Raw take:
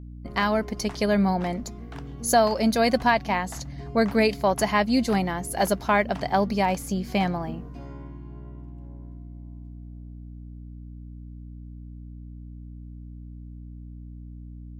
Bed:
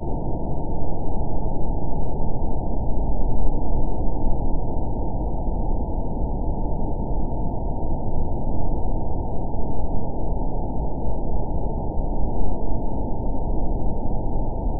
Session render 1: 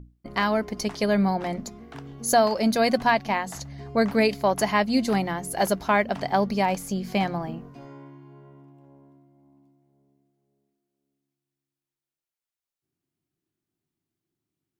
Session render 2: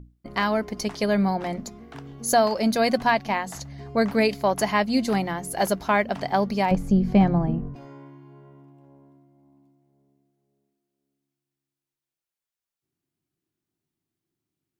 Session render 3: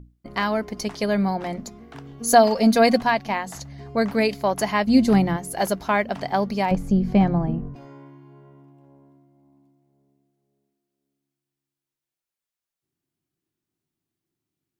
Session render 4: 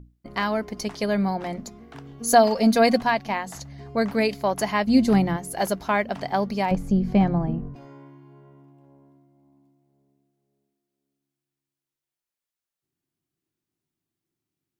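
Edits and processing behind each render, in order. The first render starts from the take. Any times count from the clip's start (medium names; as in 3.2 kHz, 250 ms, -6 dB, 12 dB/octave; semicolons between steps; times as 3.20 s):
hum notches 60/120/180/240/300 Hz
6.71–7.76 s: tilt EQ -4 dB/octave
2.20–3.01 s: comb 4.3 ms, depth 95%; 4.87–5.37 s: bass shelf 340 Hz +11 dB
trim -1.5 dB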